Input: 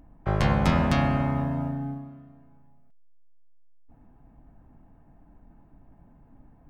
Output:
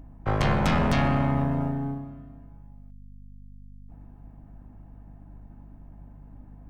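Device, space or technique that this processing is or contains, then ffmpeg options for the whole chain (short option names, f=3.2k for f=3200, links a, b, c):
valve amplifier with mains hum: -af "aeval=exprs='(tanh(11.2*val(0)+0.45)-tanh(0.45))/11.2':c=same,aeval=exprs='val(0)+0.00316*(sin(2*PI*50*n/s)+sin(2*PI*2*50*n/s)/2+sin(2*PI*3*50*n/s)/3+sin(2*PI*4*50*n/s)/4+sin(2*PI*5*50*n/s)/5)':c=same,volume=4dB"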